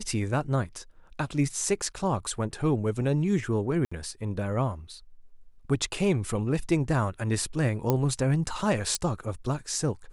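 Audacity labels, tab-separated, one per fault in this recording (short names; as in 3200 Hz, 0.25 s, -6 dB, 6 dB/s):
3.850000	3.920000	gap 65 ms
7.900000	7.900000	pop -11 dBFS
8.950000	8.950000	pop -12 dBFS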